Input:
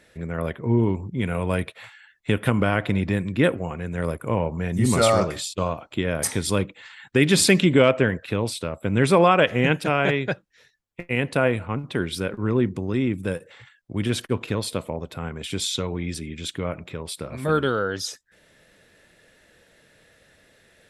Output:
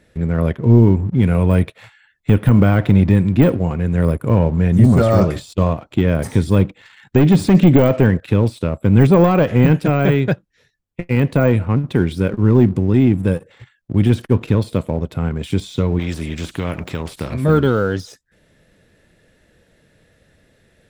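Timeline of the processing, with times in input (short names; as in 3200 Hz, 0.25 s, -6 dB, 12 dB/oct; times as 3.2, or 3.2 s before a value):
15.99–17.34 spectral compressor 2:1
whole clip: low shelf 380 Hz +12 dB; sample leveller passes 1; de-esser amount 70%; gain -1.5 dB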